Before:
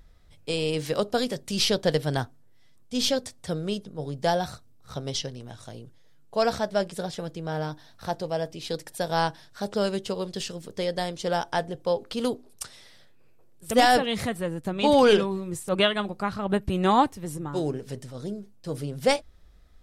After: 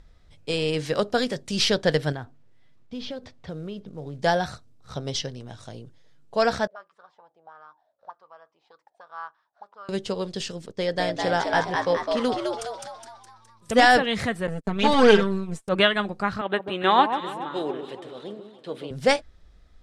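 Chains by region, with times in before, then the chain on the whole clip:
2.12–4.2 air absorption 250 m + compressor 4:1, threshold -33 dBFS + short-mantissa float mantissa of 4-bit
6.67–9.89 low shelf 380 Hz -7.5 dB + auto-wah 460–1200 Hz, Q 10, up, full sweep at -29.5 dBFS
10.66–13.85 gate -43 dBFS, range -10 dB + high shelf 11000 Hz -5.5 dB + frequency-shifting echo 0.208 s, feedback 51%, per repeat +110 Hz, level -3.5 dB
14.47–15.68 half-wave gain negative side -7 dB + gate -36 dBFS, range -31 dB + comb 4.5 ms, depth 81%
16.41–18.91 HPF 350 Hz + resonant high shelf 4400 Hz -7.5 dB, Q 3 + echo with dull and thin repeats by turns 0.141 s, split 1100 Hz, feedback 66%, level -8 dB
whole clip: LPF 7700 Hz 12 dB/oct; dynamic EQ 1700 Hz, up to +6 dB, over -44 dBFS, Q 2.1; gain +1.5 dB

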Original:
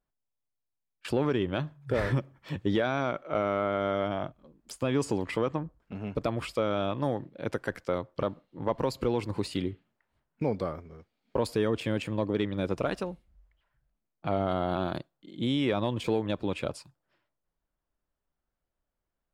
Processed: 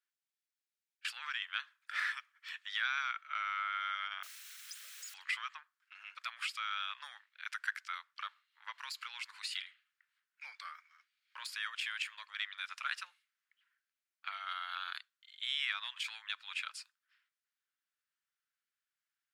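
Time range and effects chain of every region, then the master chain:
4.23–5.14 formant sharpening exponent 3 + requantised 8-bit, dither triangular + notch 4800 Hz, Q 22
whole clip: de-esser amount 90%; steep high-pass 1400 Hz 36 dB/oct; high shelf 8000 Hz -8 dB; gain +3 dB

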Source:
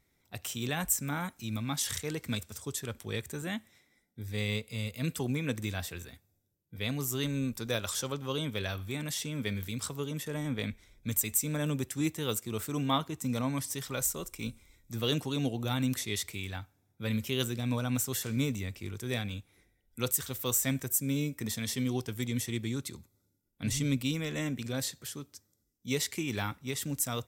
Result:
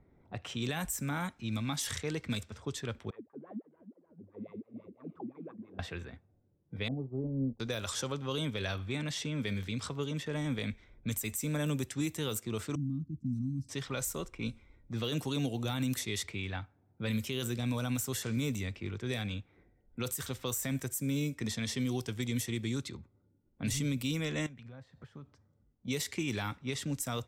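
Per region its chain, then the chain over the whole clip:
3.1–5.79 wah 5.9 Hz 210–1200 Hz, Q 13 + warbling echo 0.307 s, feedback 53%, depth 212 cents, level -14.5 dB
6.88–7.6 elliptic low-pass 760 Hz, stop band 80 dB + doubler 30 ms -13 dB + upward expander, over -50 dBFS
12.75–13.69 inverse Chebyshev band-stop 470–3600 Hz + air absorption 390 m
24.46–25.88 bell 340 Hz -9.5 dB 0.99 oct + compressor 8:1, threshold -48 dBFS
whole clip: low-pass opened by the level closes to 850 Hz, open at -28 dBFS; limiter -22.5 dBFS; three-band squash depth 40%

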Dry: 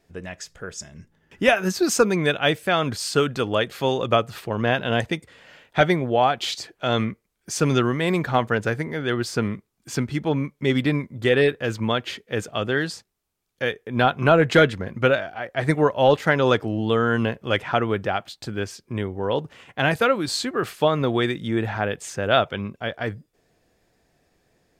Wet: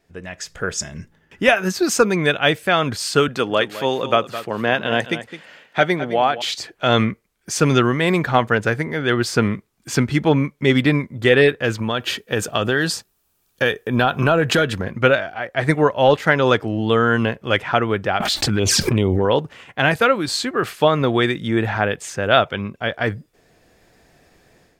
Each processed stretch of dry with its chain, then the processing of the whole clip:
3.28–6.42 HPF 160 Hz + echo 0.212 s -13 dB
11.78–14.84 high shelf 11000 Hz +12 dB + notch 2100 Hz, Q 7.6 + compressor 4:1, threshold -23 dBFS
18.2–19.25 envelope flanger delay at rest 5.8 ms, full sweep at -23.5 dBFS + fast leveller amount 100%
whole clip: bell 1800 Hz +2.5 dB 1.8 oct; AGC; gain -1 dB

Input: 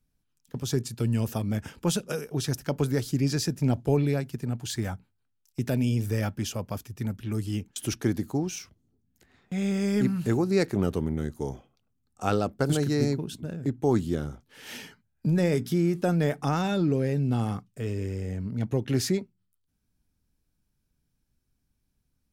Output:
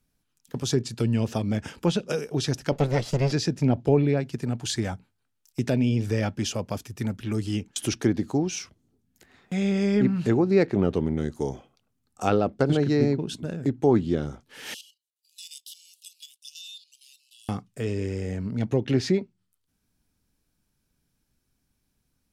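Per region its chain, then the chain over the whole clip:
2.72–3.32 minimum comb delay 1.5 ms + high shelf 6100 Hz +4.5 dB
14.74–17.49 rippled Chebyshev high-pass 2800 Hz, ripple 3 dB + level quantiser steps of 12 dB
whole clip: low shelf 170 Hz -7.5 dB; treble ducked by the level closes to 2500 Hz, closed at -22.5 dBFS; dynamic EQ 1300 Hz, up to -5 dB, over -46 dBFS, Q 1.1; gain +6 dB

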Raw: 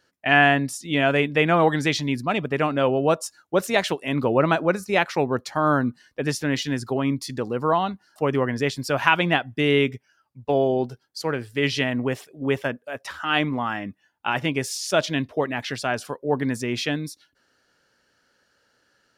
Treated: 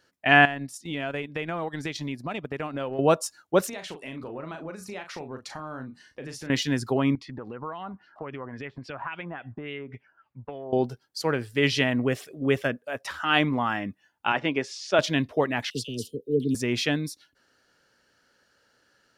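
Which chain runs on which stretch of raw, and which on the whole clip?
0.45–2.99 transient shaper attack -1 dB, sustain -11 dB + compressor 4:1, threshold -29 dBFS
3.69–6.5 LPF 11000 Hz + compressor 5:1, threshold -36 dBFS + doubler 38 ms -7.5 dB
7.15–10.73 compressor 12:1, threshold -34 dBFS + LFO low-pass sine 3.6 Hz 950–2900 Hz
12.01–12.78 bell 910 Hz -10 dB 0.31 oct + upward compressor, threshold -36 dBFS
14.32–14.99 HPF 230 Hz + air absorption 150 m
15.7–16.55 Chebyshev band-stop 470–2900 Hz, order 5 + dispersion lows, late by 45 ms, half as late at 1100 Hz
whole clip: dry

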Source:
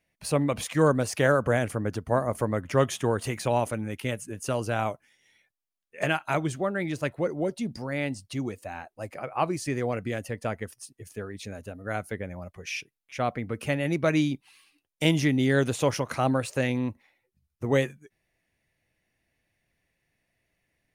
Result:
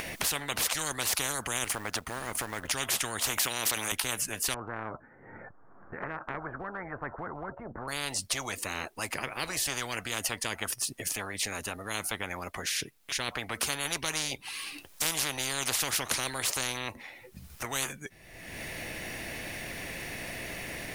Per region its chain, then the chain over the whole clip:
1.64–2.68 G.711 law mismatch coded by A + compressor 2:1, threshold -36 dBFS
3.38–3.92 HPF 630 Hz + fast leveller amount 70%
4.54–7.88 steep low-pass 1500 Hz 48 dB/oct + notch 610 Hz, Q 20 + compressor 1.5:1, threshold -32 dBFS
whole clip: upward compressor, threshold -37 dBFS; spectral compressor 10:1

